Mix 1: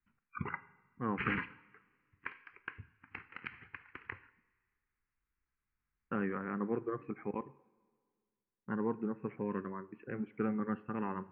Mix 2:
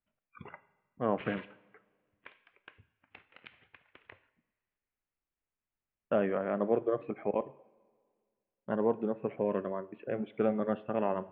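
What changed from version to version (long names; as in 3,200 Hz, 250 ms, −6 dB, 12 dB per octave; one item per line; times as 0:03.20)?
background −11.5 dB
master: remove phaser with its sweep stopped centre 1,500 Hz, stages 4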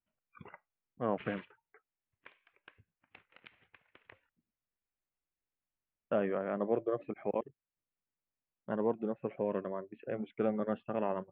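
reverb: off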